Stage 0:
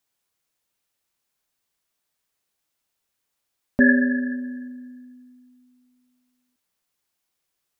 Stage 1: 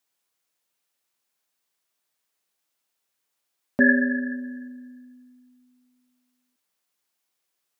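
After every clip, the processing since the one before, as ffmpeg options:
ffmpeg -i in.wav -af "highpass=frequency=250:poles=1" out.wav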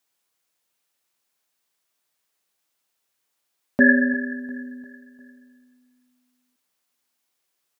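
ffmpeg -i in.wav -af "aecho=1:1:350|700|1050|1400:0.112|0.0527|0.0248|0.0116,volume=2.5dB" out.wav

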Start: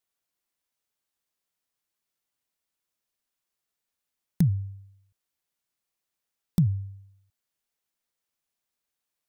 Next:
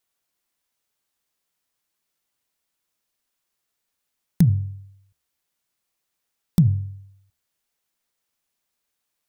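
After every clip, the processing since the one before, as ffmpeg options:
ffmpeg -i in.wav -af "bandreject=frequency=69.75:width_type=h:width=4,bandreject=frequency=139.5:width_type=h:width=4,bandreject=frequency=209.25:width_type=h:width=4,bandreject=frequency=279:width_type=h:width=4,bandreject=frequency=348.75:width_type=h:width=4,bandreject=frequency=418.5:width_type=h:width=4,bandreject=frequency=488.25:width_type=h:width=4,bandreject=frequency=558:width_type=h:width=4,bandreject=frequency=627.75:width_type=h:width=4,bandreject=frequency=697.5:width_type=h:width=4,bandreject=frequency=767.25:width_type=h:width=4,volume=6dB" out.wav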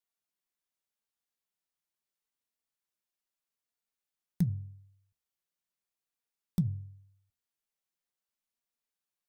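ffmpeg -i in.wav -af "flanger=delay=4.2:depth=1.4:regen=70:speed=0.81:shape=sinusoidal,volume=-9dB" out.wav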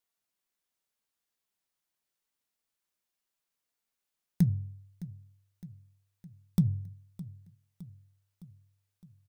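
ffmpeg -i in.wav -af "aecho=1:1:612|1224|1836|2448|3060:0.141|0.0819|0.0475|0.0276|0.016,volume=4dB" out.wav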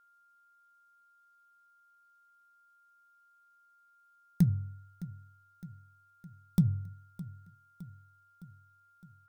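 ffmpeg -i in.wav -af "aeval=exprs='val(0)+0.000708*sin(2*PI*1400*n/s)':channel_layout=same" out.wav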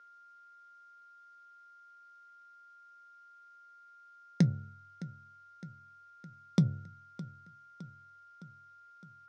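ffmpeg -i in.wav -af "highpass=frequency=160:width=0.5412,highpass=frequency=160:width=1.3066,equalizer=frequency=180:width_type=q:width=4:gain=-9,equalizer=frequency=510:width_type=q:width=4:gain=7,equalizer=frequency=850:width_type=q:width=4:gain=-4,equalizer=frequency=2100:width_type=q:width=4:gain=4,equalizer=frequency=5600:width_type=q:width=4:gain=3,lowpass=frequency=6000:width=0.5412,lowpass=frequency=6000:width=1.3066,volume=8dB" out.wav

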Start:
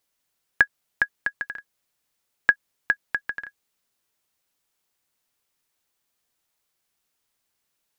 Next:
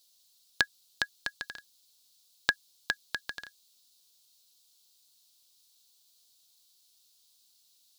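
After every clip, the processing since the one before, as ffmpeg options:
ffmpeg -i in.wav -af "highshelf=frequency=2800:width_type=q:width=3:gain=13,volume=-3dB" out.wav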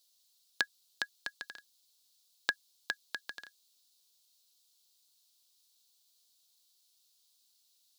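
ffmpeg -i in.wav -af "highpass=210,volume=-5dB" out.wav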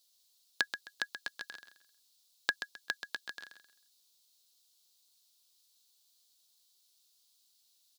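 ffmpeg -i in.wav -af "aecho=1:1:131|262|393:0.335|0.0871|0.0226" out.wav

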